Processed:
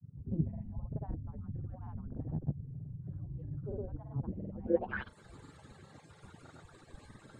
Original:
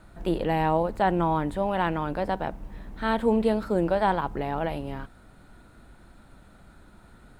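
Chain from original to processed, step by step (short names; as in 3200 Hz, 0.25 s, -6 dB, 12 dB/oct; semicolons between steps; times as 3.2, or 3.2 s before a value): median-filter separation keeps percussive; grains, pitch spread up and down by 0 st; low-pass sweep 150 Hz -> 7300 Hz, 4.61–5.14; gain +5 dB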